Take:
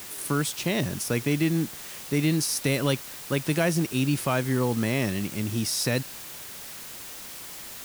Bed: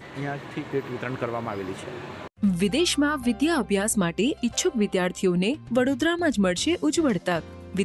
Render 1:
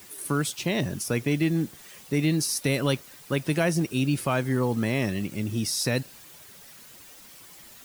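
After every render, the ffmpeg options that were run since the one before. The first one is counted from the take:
-af "afftdn=nr=10:nf=-41"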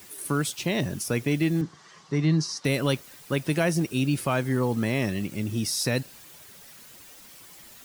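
-filter_complex "[0:a]asettb=1/sr,asplit=3[a][b][c];[a]atrim=end=1.614[d];[b]atrim=start=1.61:end=2.65,asetpts=PTS-STARTPTS,afade=t=in:d=0.004:c=qsin,afade=t=out:st=1.036:d=0.004:c=qsin,highpass=130,equalizer=f=160:t=q:w=4:g=7,equalizer=f=230:t=q:w=4:g=-9,equalizer=f=540:t=q:w=4:g=-6,equalizer=f=1.1k:t=q:w=4:g=9,equalizer=f=2.5k:t=q:w=4:g=-9,equalizer=f=3.6k:t=q:w=4:g=-4,lowpass=f=6k:w=0.5412,lowpass=f=6k:w=1.3066[e];[c]atrim=start=2.646[f];[d][e]acrossfade=d=0.004:c1=hsin:c2=qsin[g];[g][f]acrossfade=d=0.004:c1=qsin:c2=hsin"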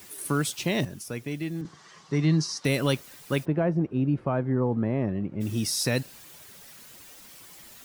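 -filter_complex "[0:a]asplit=3[a][b][c];[a]afade=t=out:st=3.44:d=0.02[d];[b]lowpass=1k,afade=t=in:st=3.44:d=0.02,afade=t=out:st=5.4:d=0.02[e];[c]afade=t=in:st=5.4:d=0.02[f];[d][e][f]amix=inputs=3:normalize=0,asplit=3[g][h][i];[g]atrim=end=0.852[j];[h]atrim=start=0.848:end=1.652,asetpts=PTS-STARTPTS,volume=-8dB[k];[i]atrim=start=1.648[l];[j][k]acrossfade=d=0.004:c1=hsin:c2=hsin[m];[m][l]acrossfade=d=0.004:c1=hsin:c2=hsin"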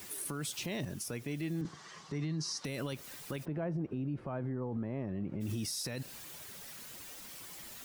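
-af "acompressor=threshold=-26dB:ratio=6,alimiter=level_in=5dB:limit=-24dB:level=0:latency=1:release=47,volume=-5dB"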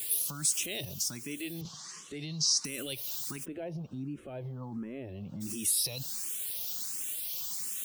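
-filter_complex "[0:a]aexciter=amount=4.1:drive=4.6:freq=2.7k,asplit=2[a][b];[b]afreqshift=1.4[c];[a][c]amix=inputs=2:normalize=1"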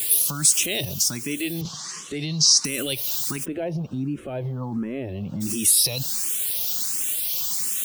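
-af "volume=11dB"

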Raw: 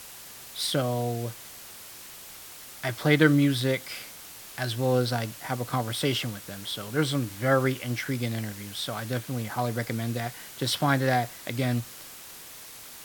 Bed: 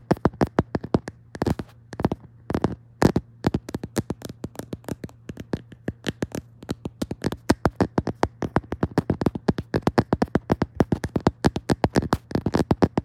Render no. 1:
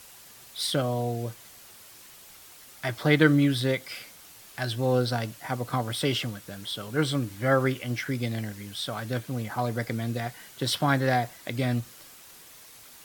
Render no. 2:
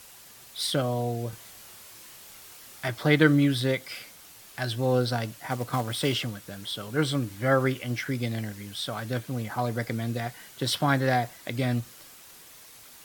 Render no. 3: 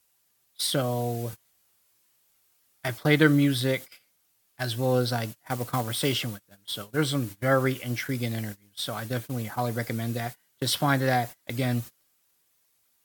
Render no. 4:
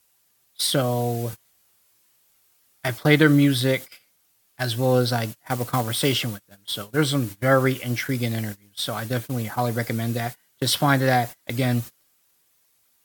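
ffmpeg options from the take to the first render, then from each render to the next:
-af "afftdn=nr=6:nf=-45"
-filter_complex "[0:a]asettb=1/sr,asplit=3[a][b][c];[a]atrim=end=1.304[d];[b]atrim=start=1.3:end=2.88,asetpts=PTS-STARTPTS,afade=t=in:d=0.004:c=qsin,afade=t=out:st=1.576:d=0.004:c=qsin,asplit=2[e][f];[f]adelay=28,volume=-2.5dB[g];[e][g]amix=inputs=2:normalize=0,atrim=end_sample=69678[h];[c]atrim=start=2.876[i];[d][h]acrossfade=d=0.004:c1=hsin:c2=qsin[j];[j][i]acrossfade=d=0.004:c1=qsin:c2=hsin,asettb=1/sr,asplit=3[k][l][m];[k]atrim=end=5.504[n];[l]atrim=start=5.5:end=6.14,asetpts=PTS-STARTPTS,afade=t=in:d=0.004:c=qsin,afade=t=out:st=0.636:d=0.004:c=qsin,acrusher=bits=4:mode=log:mix=0:aa=0.000001[o];[m]atrim=start=6.136[p];[n][o]acrossfade=d=0.004:c1=hsin:c2=qsin[q];[q][p]acrossfade=d=0.004:c1=qsin:c2=hsin"
-af "agate=range=-24dB:threshold=-35dB:ratio=16:detection=peak,highshelf=f=10k:g=8.5"
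-af "volume=4.5dB,alimiter=limit=-3dB:level=0:latency=1"

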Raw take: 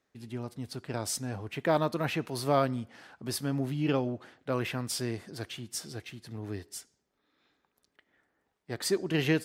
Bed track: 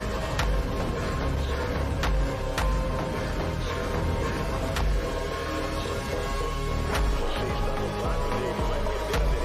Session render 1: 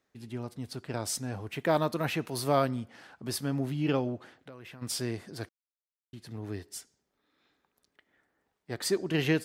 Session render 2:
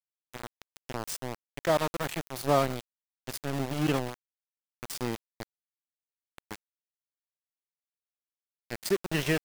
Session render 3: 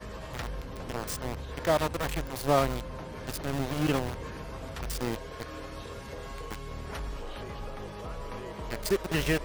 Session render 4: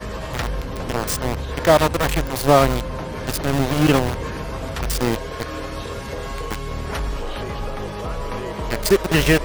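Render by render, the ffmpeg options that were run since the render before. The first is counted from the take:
-filter_complex "[0:a]asettb=1/sr,asplit=3[a][b][c];[a]atrim=end=1.364[d];[b]atrim=start=1.36:end=2.69,asetpts=PTS-STARTPTS,afade=t=in:d=0.004:c=qsin,afade=t=out:st=1.326:d=0.004:c=qsin,highshelf=f=8.1k:g=6[e];[c]atrim=start=2.686[f];[d][e]acrossfade=d=0.004:c1=hsin:c2=qsin[g];[g][f]acrossfade=d=0.004:c1=qsin:c2=hsin,asplit=3[h][i][j];[h]afade=t=out:st=4.37:d=0.02[k];[i]acompressor=threshold=-45dB:ratio=5:attack=3.2:release=140:knee=1:detection=peak,afade=t=in:st=4.37:d=0.02,afade=t=out:st=4.81:d=0.02[l];[j]afade=t=in:st=4.81:d=0.02[m];[k][l][m]amix=inputs=3:normalize=0,asplit=3[n][o][p];[n]atrim=end=5.49,asetpts=PTS-STARTPTS,afade=t=out:st=5.486:d=0.004:c=hsin[q];[o]atrim=start=5.49:end=6.13,asetpts=PTS-STARTPTS,volume=0[r];[p]atrim=start=6.13,asetpts=PTS-STARTPTS,afade=t=in:d=0.004:c=hsin[s];[q][r][s]concat=n=3:v=0:a=1"
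-af "aphaser=in_gain=1:out_gain=1:delay=2.3:decay=0.24:speed=0.79:type=triangular,aeval=exprs='val(0)*gte(abs(val(0)),0.0398)':c=same"
-filter_complex "[1:a]volume=-11.5dB[a];[0:a][a]amix=inputs=2:normalize=0"
-af "volume=11.5dB,alimiter=limit=-1dB:level=0:latency=1"

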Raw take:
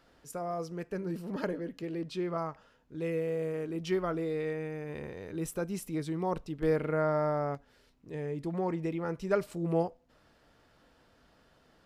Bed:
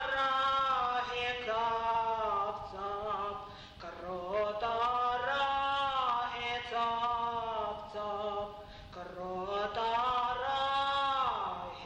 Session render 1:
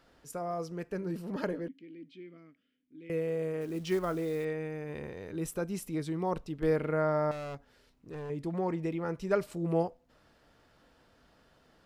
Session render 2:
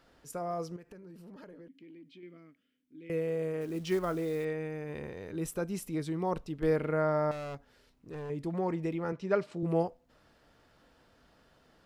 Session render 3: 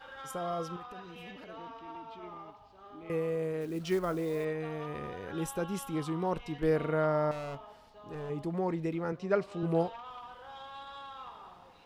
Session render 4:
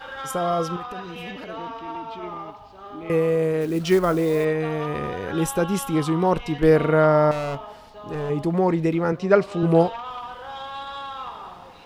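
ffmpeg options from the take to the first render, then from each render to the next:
-filter_complex "[0:a]asettb=1/sr,asplit=3[a][b][c];[a]atrim=end=1.684[d];[b]atrim=start=1.68:end=3.1,asetpts=PTS-STARTPTS,afade=t=in:d=0.004:c=qsin,afade=t=out:st=1.416:d=0.004:c=qsin,asplit=3[e][f][g];[e]bandpass=f=270:t=q:w=8,volume=0dB[h];[f]bandpass=f=2.29k:t=q:w=8,volume=-6dB[i];[g]bandpass=f=3.01k:t=q:w=8,volume=-9dB[j];[h][i][j]amix=inputs=3:normalize=0[k];[c]atrim=start=3.096[l];[d][k]acrossfade=d=0.004:c1=hsin:c2=qsin[m];[m][l]acrossfade=d=0.004:c1=qsin:c2=hsin,asettb=1/sr,asplit=3[n][o][p];[n]atrim=end=3.614[q];[o]atrim=start=3.61:end=4.45,asetpts=PTS-STARTPTS,afade=t=in:d=0.004:c=qsin,afade=t=out:st=0.836:d=0.004:c=qsin,acrusher=bits=6:mode=log:mix=0:aa=0.000001[r];[p]atrim=start=4.446[s];[q][r]acrossfade=d=0.004:c1=hsin:c2=qsin[t];[t][s]acrossfade=d=0.004:c1=qsin:c2=hsin,asettb=1/sr,asplit=3[u][v][w];[u]atrim=end=7.314[x];[v]atrim=start=7.31:end=8.3,asetpts=PTS-STARTPTS,afade=t=in:d=0.004:c=qsin,afade=t=out:st=0.986:d=0.004:c=qsin,asoftclip=type=hard:threshold=-37.5dB[y];[w]atrim=start=8.296[z];[x][y]acrossfade=d=0.004:c1=hsin:c2=qsin[aa];[aa][z]acrossfade=d=0.004:c1=qsin:c2=hsin"
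-filter_complex "[0:a]asettb=1/sr,asplit=3[a][b][c];[a]atrim=end=0.764[d];[b]atrim=start=0.76:end=2.23,asetpts=PTS-STARTPTS,afade=t=in:d=0.004:c=qsin,afade=t=out:st=1.466:d=0.004:c=qsin,acompressor=threshold=-48dB:ratio=6:attack=3.2:release=140:knee=1:detection=peak[e];[c]atrim=start=2.226[f];[d][e]acrossfade=d=0.004:c1=hsin:c2=qsin[g];[g][f]acrossfade=d=0.004:c1=qsin:c2=hsin,asettb=1/sr,asplit=3[h][i][j];[h]atrim=end=9.124[k];[i]atrim=start=9.12:end=9.63,asetpts=PTS-STARTPTS,afade=t=in:d=0.004:c=qsin,afade=t=out:st=0.506:d=0.004:c=qsin,highpass=120,lowpass=4.7k[l];[j]atrim=start=9.626[m];[k][l]acrossfade=d=0.004:c1=hsin:c2=qsin[n];[n][m]acrossfade=d=0.004:c1=qsin:c2=hsin"
-filter_complex "[1:a]volume=-14.5dB[a];[0:a][a]amix=inputs=2:normalize=0"
-af "volume=12dB"

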